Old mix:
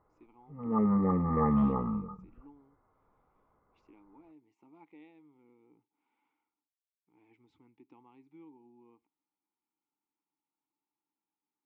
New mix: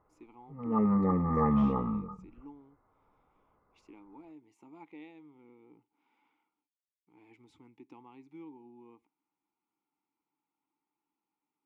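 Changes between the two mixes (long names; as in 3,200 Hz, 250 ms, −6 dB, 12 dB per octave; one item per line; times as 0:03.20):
speech +5.5 dB
master: remove high-frequency loss of the air 130 metres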